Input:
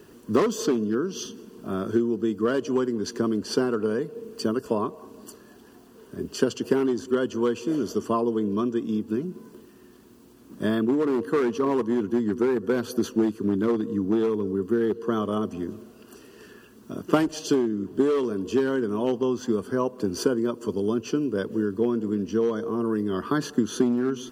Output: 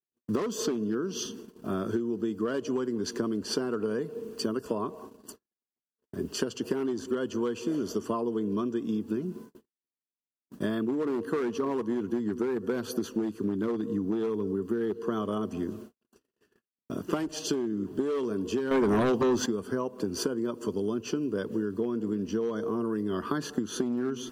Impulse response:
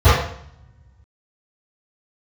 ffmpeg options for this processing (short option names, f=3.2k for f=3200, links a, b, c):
-filter_complex "[0:a]agate=range=-59dB:threshold=-43dB:ratio=16:detection=peak,acompressor=threshold=-26dB:ratio=6,asettb=1/sr,asplit=3[a][b][c];[a]atrim=end=18.714[d];[b]atrim=start=18.71:end=19.46,asetpts=PTS-STARTPTS,afade=t=in:d=0.004:c=qsin,afade=t=out:st=0.746:d=0.004:c=qsin,aeval=exprs='0.1*sin(PI/2*2*val(0)/0.1)':c=same[e];[c]atrim=start=19.456[f];[d][e]acrossfade=d=0.004:c1=hsin:c2=qsin[g];[g][f]acrossfade=d=0.004:c1=qsin:c2=hsin"